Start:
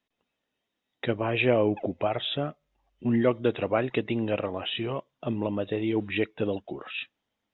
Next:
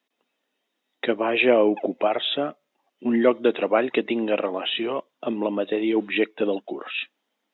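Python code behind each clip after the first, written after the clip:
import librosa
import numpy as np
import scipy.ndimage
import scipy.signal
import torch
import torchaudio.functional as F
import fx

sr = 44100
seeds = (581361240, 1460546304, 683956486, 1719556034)

y = scipy.signal.sosfilt(scipy.signal.butter(4, 230.0, 'highpass', fs=sr, output='sos'), x)
y = F.gain(torch.from_numpy(y), 5.5).numpy()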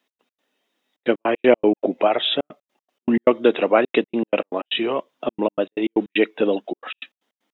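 y = fx.step_gate(x, sr, bpm=156, pattern='x.x.xxxxxx.x.x.', floor_db=-60.0, edge_ms=4.5)
y = F.gain(torch.from_numpy(y), 4.0).numpy()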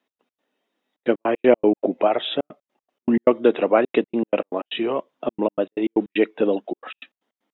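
y = fx.high_shelf(x, sr, hz=2300.0, db=-9.5)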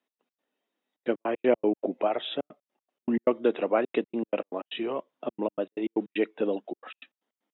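y = scipy.signal.sosfilt(scipy.signal.butter(2, 110.0, 'highpass', fs=sr, output='sos'), x)
y = F.gain(torch.from_numpy(y), -7.5).numpy()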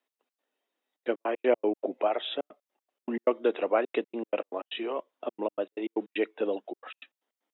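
y = scipy.signal.sosfilt(scipy.signal.butter(2, 340.0, 'highpass', fs=sr, output='sos'), x)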